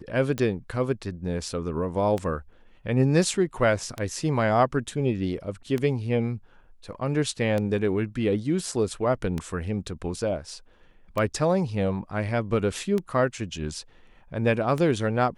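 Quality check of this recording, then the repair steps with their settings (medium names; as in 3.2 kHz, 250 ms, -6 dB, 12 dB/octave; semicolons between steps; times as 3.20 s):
tick 33 1/3 rpm -15 dBFS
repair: de-click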